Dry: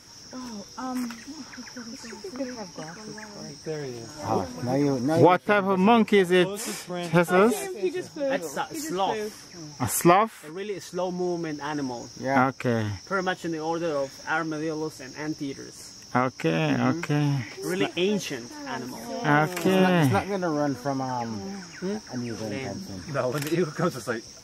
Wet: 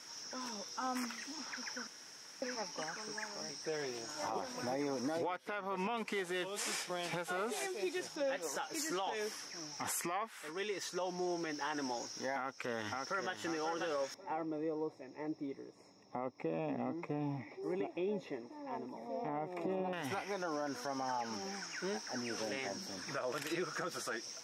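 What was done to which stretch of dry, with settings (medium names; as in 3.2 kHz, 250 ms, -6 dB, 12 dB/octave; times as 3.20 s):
1.87–2.42 s: room tone
5.97–8.16 s: CVSD coder 64 kbps
12.38–13.39 s: echo throw 540 ms, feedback 30%, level -9.5 dB
14.14–19.93 s: boxcar filter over 29 samples
whole clip: frequency weighting A; compression 4:1, threshold -30 dBFS; peak limiter -26.5 dBFS; trim -2 dB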